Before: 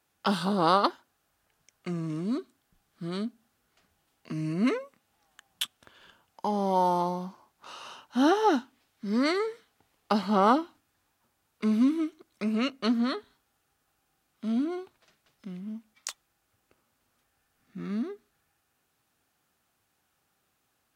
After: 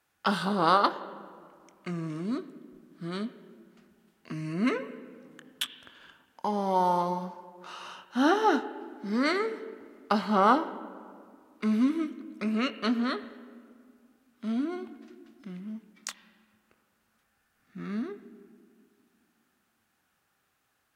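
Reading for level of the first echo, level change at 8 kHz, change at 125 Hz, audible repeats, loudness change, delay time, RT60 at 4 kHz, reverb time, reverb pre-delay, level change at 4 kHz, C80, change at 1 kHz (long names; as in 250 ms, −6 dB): no echo audible, −2.0 dB, −2.0 dB, no echo audible, −0.5 dB, no echo audible, 1.2 s, 2.1 s, 25 ms, −0.5 dB, 13.5 dB, +0.5 dB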